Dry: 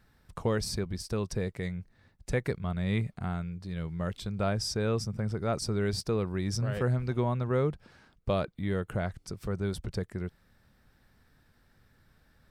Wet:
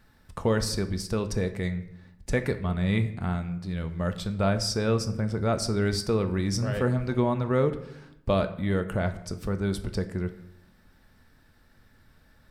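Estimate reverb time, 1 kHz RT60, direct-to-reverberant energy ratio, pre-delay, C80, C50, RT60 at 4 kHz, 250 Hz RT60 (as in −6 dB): 0.85 s, 0.75 s, 7.5 dB, 3 ms, 15.0 dB, 13.0 dB, 0.55 s, 1.1 s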